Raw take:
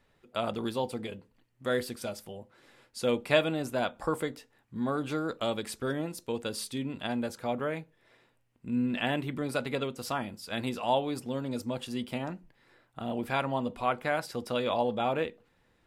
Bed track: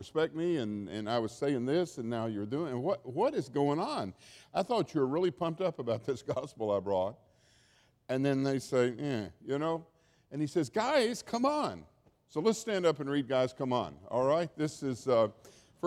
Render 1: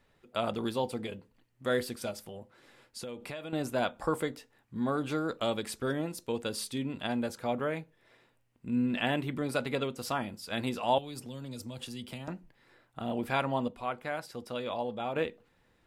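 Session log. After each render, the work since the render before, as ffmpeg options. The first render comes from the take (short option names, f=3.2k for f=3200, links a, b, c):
-filter_complex "[0:a]asettb=1/sr,asplit=3[a][b][c];[a]atrim=end=2.114[d];[b]atrim=start=2.11:end=3.53,asetpts=PTS-STARTPTS,afade=t=in:d=0.004:c=qsin,afade=t=out:st=1.416:d=0.004:c=qsin,acompressor=threshold=-38dB:ratio=6:attack=3.2:release=140:knee=1:detection=peak[e];[c]atrim=start=3.526[f];[d][e]acrossfade=d=0.004:c1=hsin:c2=qsin[g];[g][f]acrossfade=d=0.004:c1=qsin:c2=hsin,asettb=1/sr,asplit=3[h][i][j];[h]atrim=end=10.984[k];[i]atrim=start=10.98:end=12.28,asetpts=PTS-STARTPTS,afade=t=in:d=0.004:c=qsin,afade=t=out:st=1.296:d=0.004:c=qsin,acrossover=split=140|3000[l][m][n];[m]acompressor=threshold=-42dB:ratio=6:attack=3.2:release=140:knee=2.83:detection=peak[o];[l][o][n]amix=inputs=3:normalize=0[p];[j]atrim=start=12.276[q];[k][p]acrossfade=d=0.004:c1=hsin:c2=qsin[r];[r][q]acrossfade=d=0.004:c1=qsin:c2=hsin,asplit=3[s][t][u];[s]atrim=end=13.682[v];[t]atrim=start=13.678:end=15.162,asetpts=PTS-STARTPTS,volume=-6dB[w];[u]atrim=start=15.158[x];[v][w]acrossfade=d=0.004:c1=hsin:c2=hsin[y];[y][x]acrossfade=d=0.004:c1=hsin:c2=hsin"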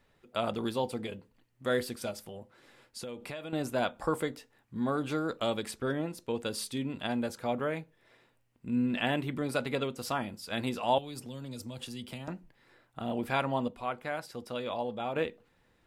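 -filter_complex "[0:a]asettb=1/sr,asplit=3[a][b][c];[a]atrim=end=5.714[d];[b]atrim=start=5.71:end=6.38,asetpts=PTS-STARTPTS,afade=t=in:d=0.004:c=qsin,afade=t=out:st=0.666:d=0.004:c=qsin,bass=f=250:g=0,treble=f=4k:g=-6[e];[c]atrim=start=6.376[f];[d][e]acrossfade=d=0.004:c1=hsin:c2=qsin[g];[g][f]acrossfade=d=0.004:c1=qsin:c2=hsin"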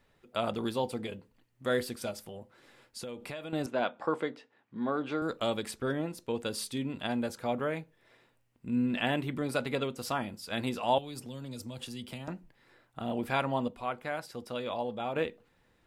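-filter_complex "[0:a]asettb=1/sr,asplit=3[a][b][c];[a]atrim=end=3.664[d];[b]atrim=start=3.66:end=5.22,asetpts=PTS-STARTPTS,afade=t=in:d=0.004:c=qsin,afade=t=out:st=1.556:d=0.004:c=qsin,highpass=210,lowpass=3.6k[e];[c]atrim=start=5.216[f];[d][e]acrossfade=d=0.004:c1=hsin:c2=qsin[g];[g][f]acrossfade=d=0.004:c1=qsin:c2=hsin"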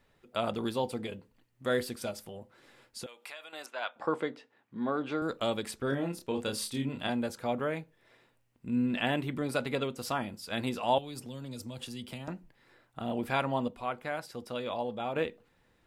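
-filter_complex "[0:a]asettb=1/sr,asplit=3[a][b][c];[a]atrim=end=3.064[d];[b]atrim=start=3.06:end=3.96,asetpts=PTS-STARTPTS,afade=t=in:d=0.004:c=qsin,afade=t=out:st=0.896:d=0.004:c=qsin,highpass=1k[e];[c]atrim=start=3.956[f];[d][e]acrossfade=d=0.004:c1=hsin:c2=qsin[g];[g][f]acrossfade=d=0.004:c1=qsin:c2=hsin,asettb=1/sr,asplit=3[h][i][j];[h]atrim=end=5.894[k];[i]atrim=start=5.89:end=7.1,asetpts=PTS-STARTPTS,afade=t=in:d=0.004:c=qsin,afade=t=out:st=1.206:d=0.004:c=qsin,asplit=2[l][m];[m]adelay=29,volume=-4.5dB[n];[l][n]amix=inputs=2:normalize=0,atrim=end_sample=53361[o];[j]atrim=start=7.096[p];[k][o]acrossfade=d=0.004:c1=hsin:c2=qsin[q];[q][p]acrossfade=d=0.004:c1=qsin:c2=hsin"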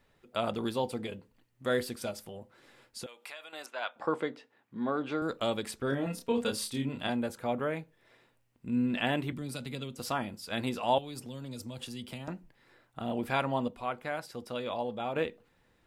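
-filter_complex "[0:a]asettb=1/sr,asplit=3[a][b][c];[a]atrim=end=6.064[d];[b]atrim=start=6.06:end=6.51,asetpts=PTS-STARTPTS,afade=t=in:d=0.004:c=qsin,afade=t=out:st=0.446:d=0.004:c=qsin,aecho=1:1:4.3:0.84,atrim=end_sample=19845[e];[c]atrim=start=6.506[f];[d][e]acrossfade=d=0.004:c1=hsin:c2=qsin[g];[g][f]acrossfade=d=0.004:c1=qsin:c2=hsin,asettb=1/sr,asplit=3[h][i][j];[h]atrim=end=7.164[k];[i]atrim=start=7.16:end=7.79,asetpts=PTS-STARTPTS,afade=t=in:d=0.004:c=qsin,afade=t=out:st=0.626:d=0.004:c=qsin,equalizer=f=5.1k:w=1.5:g=-5.5[l];[j]atrim=start=7.786[m];[k][l]acrossfade=d=0.004:c1=hsin:c2=qsin[n];[n][m]acrossfade=d=0.004:c1=qsin:c2=hsin,asettb=1/sr,asplit=3[o][p][q];[o]atrim=end=9.324[r];[p]atrim=start=9.32:end=10,asetpts=PTS-STARTPTS,afade=t=in:d=0.004:c=qsin,afade=t=out:st=0.676:d=0.004:c=qsin,acrossover=split=250|3000[s][t][u];[t]acompressor=threshold=-55dB:ratio=2:attack=3.2:release=140:knee=2.83:detection=peak[v];[s][v][u]amix=inputs=3:normalize=0[w];[q]atrim=start=9.996[x];[r][w]acrossfade=d=0.004:c1=hsin:c2=qsin[y];[y][x]acrossfade=d=0.004:c1=qsin:c2=hsin"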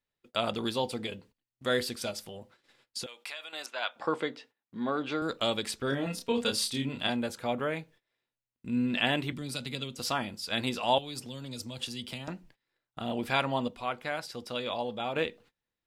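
-af "agate=range=-24dB:threshold=-57dB:ratio=16:detection=peak,equalizer=f=4.3k:w=0.62:g=8"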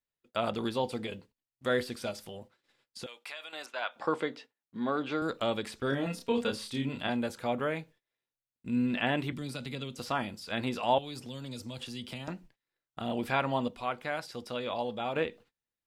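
-filter_complex "[0:a]acrossover=split=2500[a][b];[b]acompressor=threshold=-43dB:ratio=4:attack=1:release=60[c];[a][c]amix=inputs=2:normalize=0,agate=range=-7dB:threshold=-50dB:ratio=16:detection=peak"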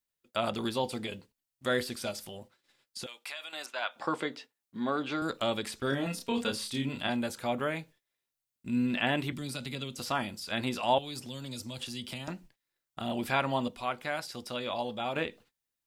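-af "highshelf=f=4.3k:g=7.5,bandreject=f=470:w=12"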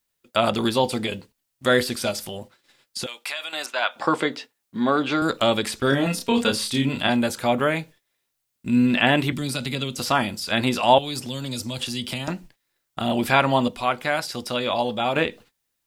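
-af "volume=10.5dB"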